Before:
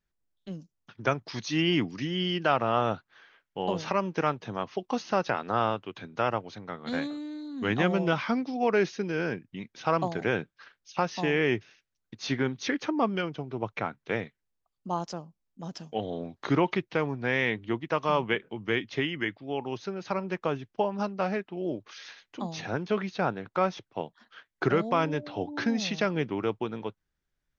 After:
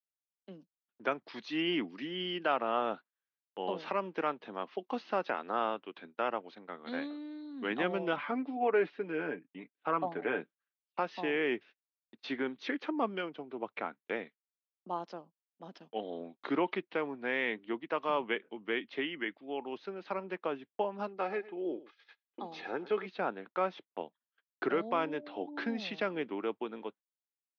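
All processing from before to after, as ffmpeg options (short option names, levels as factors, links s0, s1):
-filter_complex "[0:a]asettb=1/sr,asplit=3[s0][s1][s2];[s0]atrim=end=8.164[s3];[s1]atrim=start=8.16:end=10.41,asetpts=PTS-STARTPTS,afade=t=in:d=0.004:c=qsin,afade=t=out:st=2.246:d=0.004:c=qsin,lowpass=2500,aecho=1:1:6.9:0.56,atrim=end_sample=99225[s4];[s2]atrim=start=10.406[s5];[s3][s4]acrossfade=d=0.004:c1=hsin:c2=qsin[s6];[s6][s5]acrossfade=d=0.004:c1=qsin:c2=hsin,asettb=1/sr,asplit=3[s7][s8][s9];[s7]atrim=end=21.074[s10];[s8]atrim=start=21.07:end=23.06,asetpts=PTS-STARTPTS,afade=t=in:d=0.004:c=qsin,afade=t=out:st=1.986:d=0.004:c=qsin,bandreject=f=2900:w=23,aecho=1:1:2.4:0.45,atrim=end_sample=87759,aecho=1:1:109:0.133,atrim=end_sample=87759[s11];[s9]atrim=start=23.056[s12];[s10][s11]acrossfade=d=0.004:c1=hsin:c2=qsin[s13];[s13][s12]acrossfade=d=0.004:c1=qsin:c2=hsin,lowpass=f=3900:w=0.5412,lowpass=f=3900:w=1.3066,agate=range=0.0158:threshold=0.00631:ratio=16:detection=peak,highpass=f=230:w=0.5412,highpass=f=230:w=1.3066,volume=0.531"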